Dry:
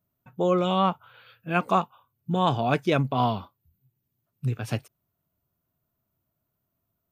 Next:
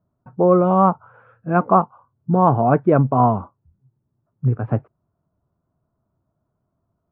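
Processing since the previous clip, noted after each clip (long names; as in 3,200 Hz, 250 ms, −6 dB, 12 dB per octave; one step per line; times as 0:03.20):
inverse Chebyshev low-pass filter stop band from 7,100 Hz, stop band 80 dB
level +8.5 dB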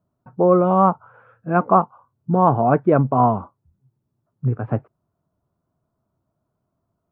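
low-shelf EQ 120 Hz −5 dB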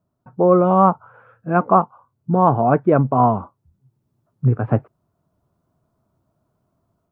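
automatic gain control gain up to 6 dB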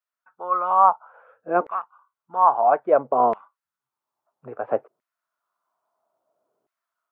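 auto-filter high-pass saw down 0.6 Hz 400–2,000 Hz
level −5.5 dB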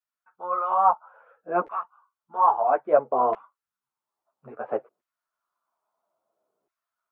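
string-ensemble chorus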